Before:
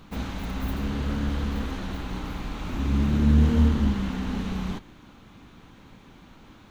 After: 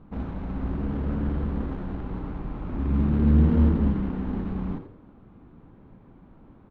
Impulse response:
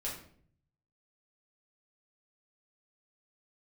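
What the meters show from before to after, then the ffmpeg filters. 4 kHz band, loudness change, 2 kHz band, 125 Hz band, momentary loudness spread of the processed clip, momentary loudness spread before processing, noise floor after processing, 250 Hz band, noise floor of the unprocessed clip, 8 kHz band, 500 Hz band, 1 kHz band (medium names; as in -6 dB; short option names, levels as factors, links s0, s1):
under -15 dB, 0.0 dB, -8.0 dB, +0.5 dB, 15 LU, 14 LU, -53 dBFS, +0.5 dB, -51 dBFS, no reading, +1.0 dB, -3.0 dB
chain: -filter_complex "[0:a]adynamicsmooth=sensitivity=1:basefreq=930,asplit=4[s0][s1][s2][s3];[s1]adelay=85,afreqshift=94,volume=0.282[s4];[s2]adelay=170,afreqshift=188,volume=0.0902[s5];[s3]adelay=255,afreqshift=282,volume=0.0288[s6];[s0][s4][s5][s6]amix=inputs=4:normalize=0"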